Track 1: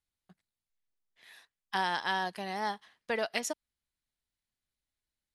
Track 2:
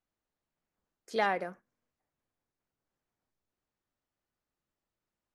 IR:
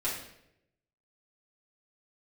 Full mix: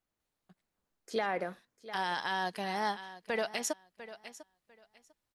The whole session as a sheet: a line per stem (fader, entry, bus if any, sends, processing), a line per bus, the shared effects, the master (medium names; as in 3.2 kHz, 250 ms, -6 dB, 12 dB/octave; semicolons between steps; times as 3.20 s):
+1.5 dB, 0.20 s, no send, echo send -17 dB, auto duck -11 dB, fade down 1.65 s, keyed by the second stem
+1.5 dB, 0.00 s, no send, echo send -18 dB, none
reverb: none
echo: feedback delay 698 ms, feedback 19%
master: peak limiter -21.5 dBFS, peak gain reduction 8 dB